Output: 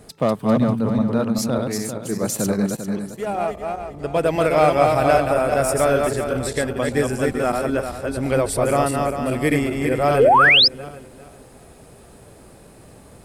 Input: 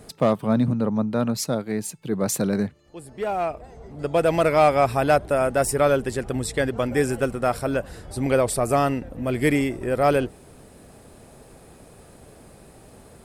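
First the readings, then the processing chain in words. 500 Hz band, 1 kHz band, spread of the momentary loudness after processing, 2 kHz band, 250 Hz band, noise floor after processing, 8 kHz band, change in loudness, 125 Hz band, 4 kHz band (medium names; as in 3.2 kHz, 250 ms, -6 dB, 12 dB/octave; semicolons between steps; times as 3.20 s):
+3.0 dB, +4.5 dB, 12 LU, +8.0 dB, +2.5 dB, -46 dBFS, +2.5 dB, +3.5 dB, +2.0 dB, +15.5 dB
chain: backward echo that repeats 198 ms, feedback 53%, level -3 dB; painted sound rise, 10.19–10.68 s, 390–5400 Hz -12 dBFS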